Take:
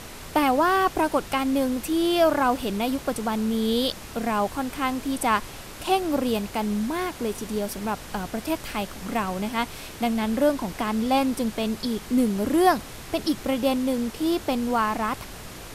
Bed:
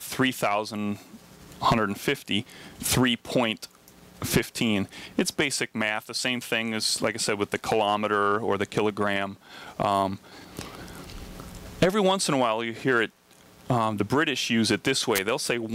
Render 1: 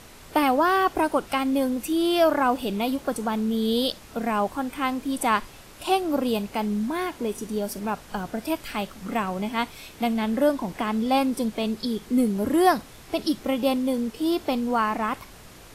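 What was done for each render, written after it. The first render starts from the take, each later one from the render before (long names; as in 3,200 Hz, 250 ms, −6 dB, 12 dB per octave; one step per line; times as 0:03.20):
noise reduction from a noise print 7 dB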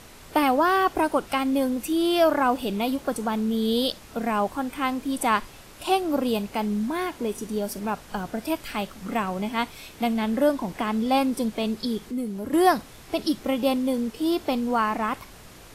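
0:12.05–0:12.53: downward compressor 1.5 to 1, threshold −40 dBFS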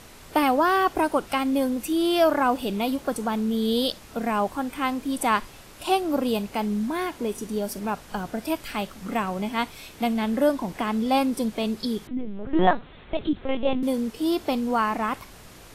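0:12.07–0:13.83: linear-prediction vocoder at 8 kHz pitch kept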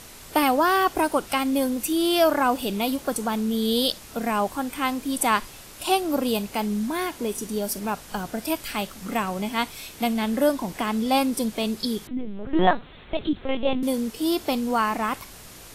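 high-shelf EQ 3,900 Hz +8 dB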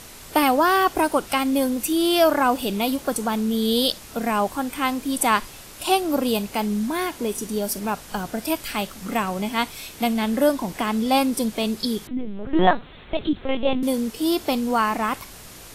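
level +2 dB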